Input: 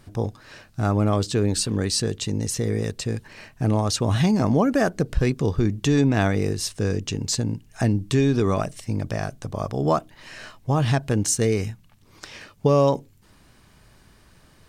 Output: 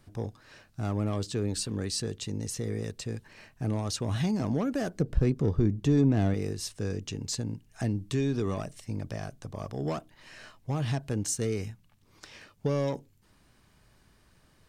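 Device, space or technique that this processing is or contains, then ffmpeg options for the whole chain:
one-band saturation: -filter_complex "[0:a]asettb=1/sr,asplit=3[link_01][link_02][link_03];[link_01]atrim=end=5.004[link_04];[link_02]atrim=start=5:end=6.34,asetpts=PTS-STARTPTS,afade=type=in:duration=0.004:curve=qsin,afade=type=out:start_time=1.336:duration=0.004:curve=qsin,tiltshelf=frequency=1200:gain=5.5[link_05];[link_03]atrim=start=6.336[link_06];[link_04][link_05]acrossfade=duration=0.004:curve1=hsin:curve2=qsin[link_07];[link_07][link_06]acrossfade=duration=0.004:curve1=qsin:curve2=hsin,acrossover=split=460|2700[link_08][link_09][link_10];[link_09]asoftclip=type=tanh:threshold=-25dB[link_11];[link_08][link_11][link_10]amix=inputs=3:normalize=0,volume=-8.5dB"

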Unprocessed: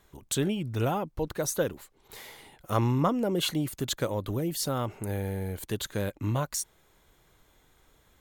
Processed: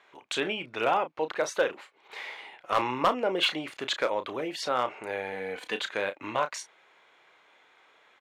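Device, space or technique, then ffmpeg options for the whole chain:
megaphone: -filter_complex "[0:a]asettb=1/sr,asplit=3[link_01][link_02][link_03];[link_01]atrim=end=5.324[link_04];[link_02]atrim=start=5.32:end=5.8,asetpts=PTS-STARTPTS,afade=type=in:duration=0.004:curve=qsin,afade=type=out:start_time=0.476:duration=0.004:curve=qsin,aecho=1:1:4:0.59,atrim=end_sample=21168[link_05];[link_03]atrim=start=5.796[link_06];[link_04][link_05]acrossfade=duration=0.004:curve1=hsin:curve2=qsin[link_07];[link_07][link_06]acrossfade=duration=0.004:curve1=qsin:curve2=hsin,highpass=620,lowpass=3000,equalizer=frequency=2400:width_type=o:width=0.51:gain=6,asoftclip=type=hard:threshold=-23dB,asplit=2[link_08][link_09];[link_09]adelay=32,volume=-10.5dB[link_10];[link_08][link_10]amix=inputs=2:normalize=0,volume=7dB"

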